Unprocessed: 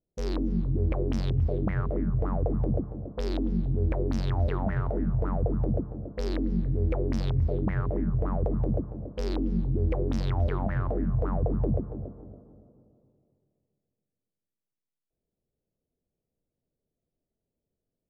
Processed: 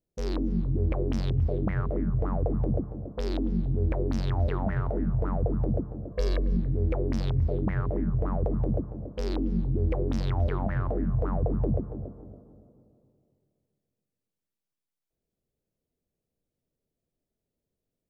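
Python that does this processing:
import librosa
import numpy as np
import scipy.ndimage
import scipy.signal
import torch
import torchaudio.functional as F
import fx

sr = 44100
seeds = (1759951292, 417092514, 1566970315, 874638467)

y = fx.comb(x, sr, ms=1.8, depth=0.8, at=(6.11, 6.57))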